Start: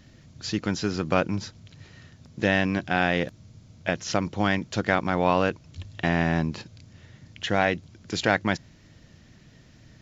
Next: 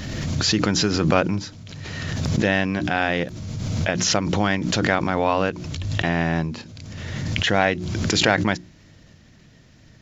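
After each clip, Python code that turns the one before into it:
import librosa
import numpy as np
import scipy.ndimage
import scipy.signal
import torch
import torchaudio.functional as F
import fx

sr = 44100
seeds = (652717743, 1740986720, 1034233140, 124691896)

y = fx.rider(x, sr, range_db=10, speed_s=2.0)
y = fx.hum_notches(y, sr, base_hz=60, count=6)
y = fx.pre_swell(y, sr, db_per_s=26.0)
y = y * 10.0 ** (3.5 / 20.0)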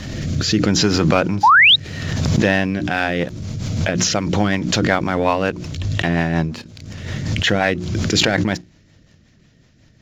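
y = fx.leveller(x, sr, passes=1)
y = fx.rotary_switch(y, sr, hz=0.75, then_hz=5.5, switch_at_s=2.53)
y = fx.spec_paint(y, sr, seeds[0], shape='rise', start_s=1.43, length_s=0.33, low_hz=790.0, high_hz=4000.0, level_db=-11.0)
y = y * 10.0 ** (1.5 / 20.0)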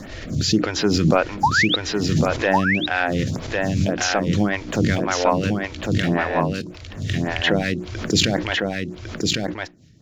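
y = x + 10.0 ** (-3.5 / 20.0) * np.pad(x, (int(1103 * sr / 1000.0), 0))[:len(x)]
y = fx.stagger_phaser(y, sr, hz=1.8)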